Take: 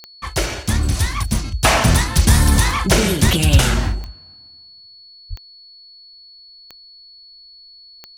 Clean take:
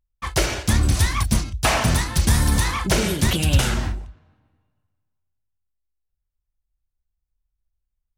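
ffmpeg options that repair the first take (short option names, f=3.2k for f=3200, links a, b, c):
-filter_complex "[0:a]adeclick=t=4,bandreject=f=4.4k:w=30,asplit=3[a][b][c];[a]afade=t=out:st=1.87:d=0.02[d];[b]highpass=f=140:w=0.5412,highpass=f=140:w=1.3066,afade=t=in:st=1.87:d=0.02,afade=t=out:st=1.99:d=0.02[e];[c]afade=t=in:st=1.99:d=0.02[f];[d][e][f]amix=inputs=3:normalize=0,asplit=3[g][h][i];[g]afade=t=out:st=5.29:d=0.02[j];[h]highpass=f=140:w=0.5412,highpass=f=140:w=1.3066,afade=t=in:st=5.29:d=0.02,afade=t=out:st=5.41:d=0.02[k];[i]afade=t=in:st=5.41:d=0.02[l];[j][k][l]amix=inputs=3:normalize=0,asetnsamples=n=441:p=0,asendcmd='1.44 volume volume -5dB',volume=0dB"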